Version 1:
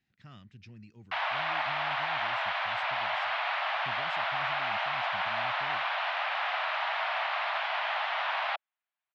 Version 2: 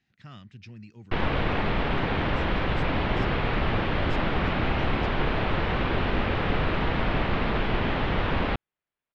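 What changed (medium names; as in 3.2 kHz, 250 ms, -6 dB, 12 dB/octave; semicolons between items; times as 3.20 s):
speech +5.5 dB; background: remove steep high-pass 640 Hz 72 dB/octave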